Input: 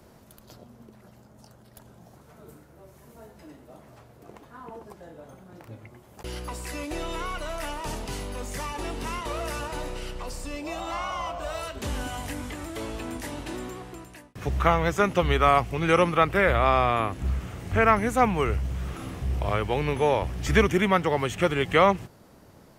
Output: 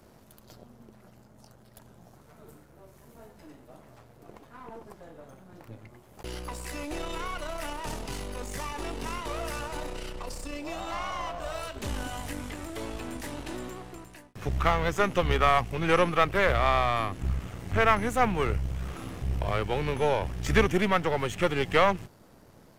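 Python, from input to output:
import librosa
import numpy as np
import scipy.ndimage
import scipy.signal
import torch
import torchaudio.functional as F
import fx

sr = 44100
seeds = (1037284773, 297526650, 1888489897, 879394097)

y = np.where(x < 0.0, 10.0 ** (-7.0 / 20.0) * x, x)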